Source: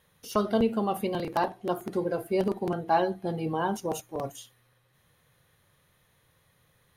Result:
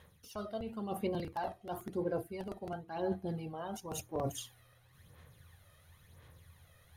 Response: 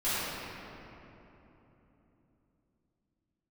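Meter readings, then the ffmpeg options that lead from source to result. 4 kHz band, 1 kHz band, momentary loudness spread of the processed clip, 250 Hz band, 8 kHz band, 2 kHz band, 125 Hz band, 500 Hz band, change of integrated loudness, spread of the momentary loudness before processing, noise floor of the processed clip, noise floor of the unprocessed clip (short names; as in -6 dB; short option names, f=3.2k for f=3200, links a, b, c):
-8.0 dB, -12.5 dB, 22 LU, -10.0 dB, -3.5 dB, -12.0 dB, -6.5 dB, -10.0 dB, -10.5 dB, 8 LU, -65 dBFS, -68 dBFS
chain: -af "equalizer=f=83:t=o:w=0.31:g=13.5,areverse,acompressor=threshold=-39dB:ratio=5,areverse,aphaser=in_gain=1:out_gain=1:delay=1.6:decay=0.54:speed=0.96:type=sinusoidal"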